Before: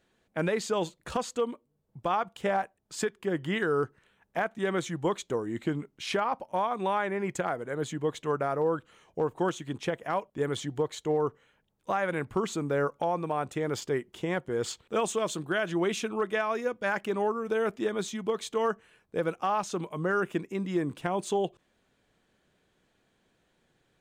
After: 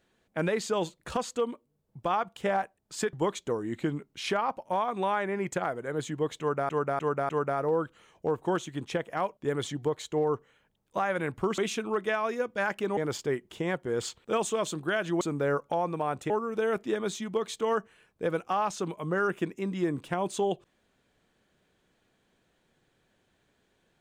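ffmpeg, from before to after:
-filter_complex "[0:a]asplit=9[s0][s1][s2][s3][s4][s5][s6][s7][s8];[s0]atrim=end=3.132[s9];[s1]atrim=start=4.958:end=8.522[s10];[s2]atrim=start=8.218:end=8.522[s11];[s3]atrim=start=8.218:end=8.522[s12];[s4]atrim=start=8.218:end=12.512[s13];[s5]atrim=start=15.838:end=17.232[s14];[s6]atrim=start=13.598:end=15.842[s15];[s7]atrim=start=12.508:end=13.602[s16];[s8]atrim=start=17.228[s17];[s9][s10]acrossfade=d=0.004:c1=hsin:c2=hsin[s18];[s18][s11]acrossfade=d=0.004:c1=hsin:c2=hsin[s19];[s19][s12]acrossfade=d=0.004:c1=hsin:c2=hsin[s20];[s20][s13]acrossfade=d=0.004:c1=hsin:c2=hsin[s21];[s21][s14]acrossfade=d=0.004:c1=hsin:c2=hsin[s22];[s22][s15]acrossfade=d=0.004:c1=hsin:c2=hsin[s23];[s23][s16]acrossfade=d=0.004:c1=hsin:c2=hsin[s24];[s24][s17]acrossfade=d=0.004:c1=hsin:c2=hsin"

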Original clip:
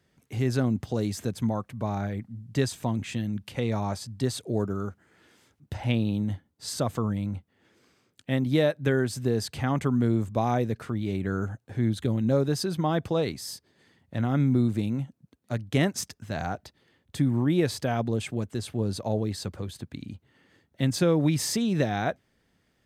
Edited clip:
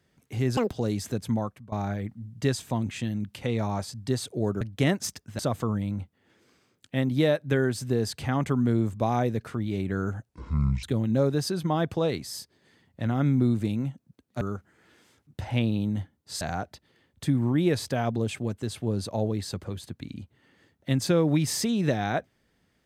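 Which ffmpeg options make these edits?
-filter_complex "[0:a]asplit=10[s0][s1][s2][s3][s4][s5][s6][s7][s8][s9];[s0]atrim=end=0.574[s10];[s1]atrim=start=0.57:end=0.84,asetpts=PTS-STARTPTS,asetrate=85113,aresample=44100,atrim=end_sample=6169,asetpts=PTS-STARTPTS[s11];[s2]atrim=start=0.836:end=1.85,asetpts=PTS-STARTPTS,afade=t=out:st=0.714:d=0.3:silence=0.0841395[s12];[s3]atrim=start=1.85:end=4.742,asetpts=PTS-STARTPTS,afade=t=in:d=0.004:c=hsin:silence=0.0841395[s13];[s4]atrim=start=15.548:end=16.332[s14];[s5]atrim=start=6.738:end=11.644[s15];[s6]atrim=start=11.64:end=11.97,asetpts=PTS-STARTPTS,asetrate=26901,aresample=44100,atrim=end_sample=23857,asetpts=PTS-STARTPTS[s16];[s7]atrim=start=11.966:end=15.552[s17];[s8]atrim=start=4.738:end=6.742[s18];[s9]atrim=start=16.328[s19];[s10][s11]acrossfade=d=0.004:c1=hsin:c2=hsin[s20];[s12][s13]concat=n=2:v=0:a=1[s21];[s20][s21]acrossfade=d=0.004:c1=hsin:c2=hsin[s22];[s22][s14]acrossfade=d=0.004:c1=hsin:c2=hsin[s23];[s23][s15]acrossfade=d=0.004:c1=hsin:c2=hsin[s24];[s24][s16]acrossfade=d=0.004:c1=hsin:c2=hsin[s25];[s25][s17]acrossfade=d=0.004:c1=hsin:c2=hsin[s26];[s26][s18]acrossfade=d=0.004:c1=hsin:c2=hsin[s27];[s27][s19]acrossfade=d=0.004:c1=hsin:c2=hsin"

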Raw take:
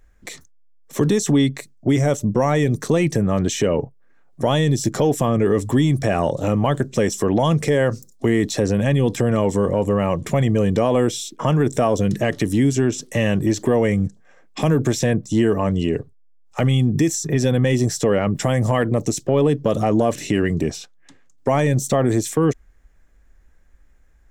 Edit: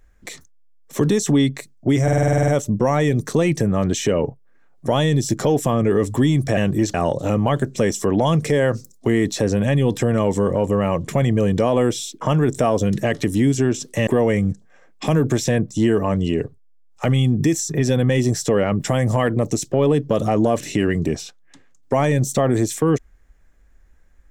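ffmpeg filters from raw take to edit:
-filter_complex "[0:a]asplit=13[s0][s1][s2][s3][s4][s5][s6][s7][s8][s9][s10][s11][s12];[s0]atrim=end=2.082[s13];[s1]atrim=start=2.028:end=2.082[s14];[s2]atrim=start=2.028:end=2.082[s15];[s3]atrim=start=2.028:end=2.082[s16];[s4]atrim=start=2.028:end=2.082[s17];[s5]atrim=start=2.028:end=2.082[s18];[s6]atrim=start=2.028:end=2.082[s19];[s7]atrim=start=2.028:end=2.082[s20];[s8]atrim=start=2.028:end=2.082[s21];[s9]atrim=start=2.028:end=6.122[s22];[s10]atrim=start=13.248:end=13.622[s23];[s11]atrim=start=6.118:end=13.252[s24];[s12]atrim=start=13.618[s25];[s13][s14]acrossfade=d=0.004:c1=hsin:c2=hsin[s26];[s26][s15]acrossfade=d=0.004:c1=hsin:c2=hsin[s27];[s27][s16]acrossfade=d=0.004:c1=hsin:c2=hsin[s28];[s28][s17]acrossfade=d=0.004:c1=hsin:c2=hsin[s29];[s29][s18]acrossfade=d=0.004:c1=hsin:c2=hsin[s30];[s30][s19]acrossfade=d=0.004:c1=hsin:c2=hsin[s31];[s31][s20]acrossfade=d=0.004:c1=hsin:c2=hsin[s32];[s32][s21]acrossfade=d=0.004:c1=hsin:c2=hsin[s33];[s33][s22]acrossfade=d=0.004:c1=hsin:c2=hsin[s34];[s34][s23]acrossfade=d=0.004:c1=hsin:c2=hsin[s35];[s35][s24]acrossfade=d=0.004:c1=hsin:c2=hsin[s36];[s36][s25]acrossfade=d=0.004:c1=hsin:c2=hsin"

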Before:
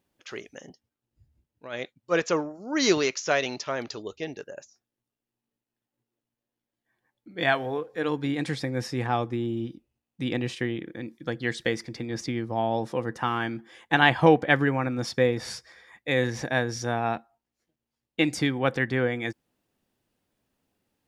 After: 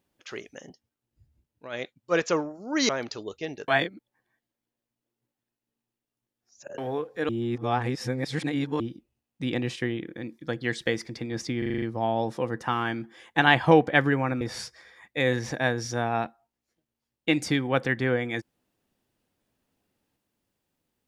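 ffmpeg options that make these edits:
-filter_complex "[0:a]asplit=13[s0][s1][s2][s3][s4][s5][s6][s7][s8][s9][s10][s11][s12];[s0]atrim=end=2.892[s13];[s1]atrim=start=3.678:end=4.472[s14];[s2]atrim=start=4.468:end=7.572,asetpts=PTS-STARTPTS,areverse[s15];[s3]atrim=start=7.568:end=8.082[s16];[s4]atrim=start=8.078:end=9.592,asetpts=PTS-STARTPTS,areverse[s17];[s5]atrim=start=9.588:end=12.412[s18];[s6]atrim=start=12.368:end=12.412[s19];[s7]atrim=start=12.368:end=12.412[s20];[s8]atrim=start=12.368:end=12.412[s21];[s9]atrim=start=12.368:end=12.412[s22];[s10]atrim=start=12.368:end=12.412[s23];[s11]atrim=start=12.368:end=14.962[s24];[s12]atrim=start=15.318[s25];[s13][s14]acrossfade=d=0.004:c1=hsin:c2=hsin[s26];[s26][s15]acrossfade=d=0.004:c1=hsin:c2=hsin[s27];[s27][s16]acrossfade=d=0.004:c1=hsin:c2=hsin[s28];[s28][s17]acrossfade=d=0.004:c1=hsin:c2=hsin[s29];[s29][s18]acrossfade=d=0.004:c1=hsin:c2=hsin[s30];[s30][s19]acrossfade=d=0.004:c1=hsin:c2=hsin[s31];[s31][s20]acrossfade=d=0.004:c1=hsin:c2=hsin[s32];[s32][s21]acrossfade=d=0.004:c1=hsin:c2=hsin[s33];[s33][s22]acrossfade=d=0.004:c1=hsin:c2=hsin[s34];[s34][s23]acrossfade=d=0.004:c1=hsin:c2=hsin[s35];[s35][s24]acrossfade=d=0.004:c1=hsin:c2=hsin[s36];[s36][s25]acrossfade=d=0.004:c1=hsin:c2=hsin"

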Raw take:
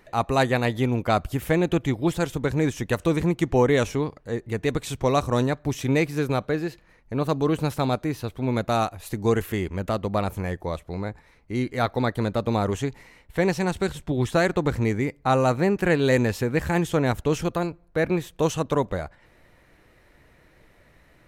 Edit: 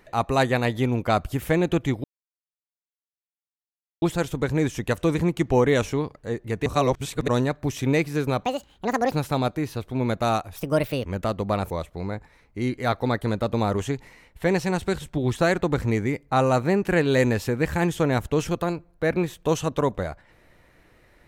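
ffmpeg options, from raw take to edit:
-filter_complex "[0:a]asplit=9[s0][s1][s2][s3][s4][s5][s6][s7][s8];[s0]atrim=end=2.04,asetpts=PTS-STARTPTS,afade=t=out:st=2.036:d=0.004:c=hsin,apad=pad_dur=1.98[s9];[s1]atrim=start=2.04:end=4.682,asetpts=PTS-STARTPTS,afade=t=in:d=0.004:c=hsin[s10];[s2]atrim=start=4.678:end=5.302,asetpts=PTS-STARTPTS,areverse[s11];[s3]atrim=start=5.298:end=6.464[s12];[s4]atrim=start=6.46:end=7.6,asetpts=PTS-STARTPTS,asetrate=73206,aresample=44100[s13];[s5]atrim=start=7.596:end=9.034[s14];[s6]atrim=start=9.03:end=9.7,asetpts=PTS-STARTPTS,asetrate=59535,aresample=44100[s15];[s7]atrim=start=9.696:end=10.352[s16];[s8]atrim=start=10.638[s17];[s9][s10]concat=n=2:v=0:a=1[s18];[s18][s11]acrossfade=d=0.004:c1=hsin:c2=hsin[s19];[s19][s12]acrossfade=d=0.004:c1=hsin:c2=hsin[s20];[s20][s13]acrossfade=d=0.004:c1=hsin:c2=hsin[s21];[s21][s14]acrossfade=d=0.004:c1=hsin:c2=hsin[s22];[s22][s15]acrossfade=d=0.004:c1=hsin:c2=hsin[s23];[s23][s16]acrossfade=d=0.004:c1=hsin:c2=hsin[s24];[s24][s17]acrossfade=d=0.004:c1=hsin:c2=hsin"

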